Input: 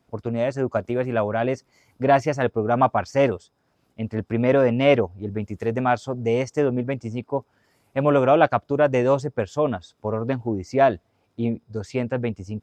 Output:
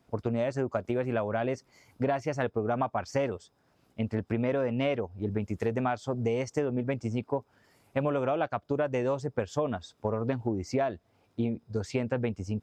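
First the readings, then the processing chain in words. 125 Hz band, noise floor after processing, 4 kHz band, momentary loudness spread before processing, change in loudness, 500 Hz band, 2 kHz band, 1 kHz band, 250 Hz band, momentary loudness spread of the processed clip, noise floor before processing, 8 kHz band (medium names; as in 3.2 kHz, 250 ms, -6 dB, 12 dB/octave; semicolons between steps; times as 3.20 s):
-6.0 dB, -69 dBFS, -8.0 dB, 11 LU, -8.5 dB, -9.0 dB, -9.0 dB, -10.5 dB, -6.5 dB, 5 LU, -68 dBFS, no reading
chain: compression 12:1, threshold -25 dBFS, peak gain reduction 15 dB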